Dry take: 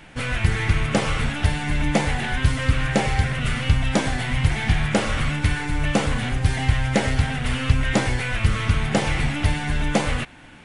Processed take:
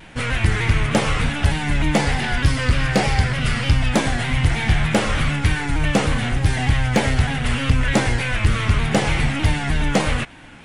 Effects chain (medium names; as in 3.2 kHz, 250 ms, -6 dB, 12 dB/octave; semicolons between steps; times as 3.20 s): 1.99–3.90 s: peaking EQ 4.9 kHz +8 dB 0.25 oct; hard clipper -11 dBFS, distortion -18 dB; vibrato with a chosen wave saw down 3.3 Hz, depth 100 cents; trim +3 dB